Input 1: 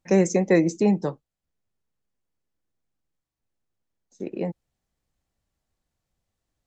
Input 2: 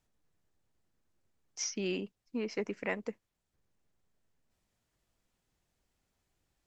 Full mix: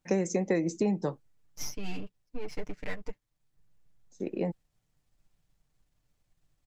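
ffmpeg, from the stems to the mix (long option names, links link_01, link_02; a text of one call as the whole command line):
ffmpeg -i stem1.wav -i stem2.wav -filter_complex "[0:a]volume=-2dB[link_01];[1:a]aeval=exprs='if(lt(val(0),0),0.251*val(0),val(0))':channel_layout=same,aecho=1:1:6.7:1,asubboost=boost=4:cutoff=170,volume=-2dB[link_02];[link_01][link_02]amix=inputs=2:normalize=0,acompressor=threshold=-24dB:ratio=6" out.wav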